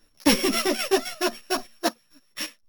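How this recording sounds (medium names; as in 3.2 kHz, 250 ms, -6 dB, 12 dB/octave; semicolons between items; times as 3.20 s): a buzz of ramps at a fixed pitch in blocks of 8 samples; chopped level 3.8 Hz, depth 60%, duty 30%; a shimmering, thickened sound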